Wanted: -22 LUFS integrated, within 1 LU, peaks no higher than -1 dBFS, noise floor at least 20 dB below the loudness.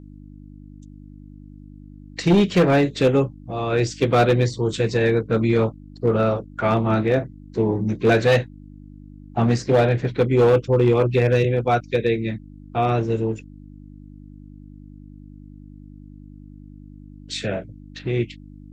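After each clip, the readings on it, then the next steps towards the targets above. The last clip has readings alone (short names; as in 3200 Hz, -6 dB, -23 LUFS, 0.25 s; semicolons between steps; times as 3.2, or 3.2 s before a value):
clipped 0.7%; flat tops at -10.5 dBFS; hum 50 Hz; harmonics up to 300 Hz; hum level -40 dBFS; loudness -20.5 LUFS; peak -10.5 dBFS; loudness target -22.0 LUFS
-> clip repair -10.5 dBFS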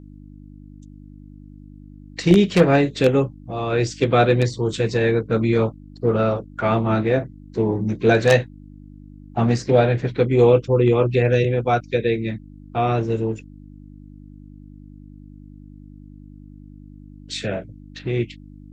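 clipped 0.0%; hum 50 Hz; harmonics up to 300 Hz; hum level -41 dBFS
-> de-hum 50 Hz, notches 6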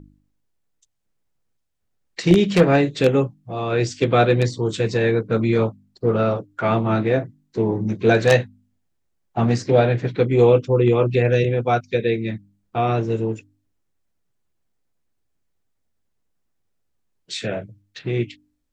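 hum none; loudness -20.0 LUFS; peak -1.5 dBFS; loudness target -22.0 LUFS
-> gain -2 dB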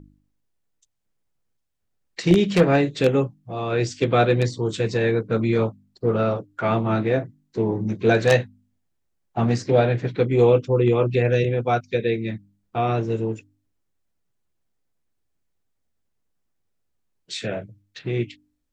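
loudness -22.0 LUFS; peak -3.5 dBFS; noise floor -73 dBFS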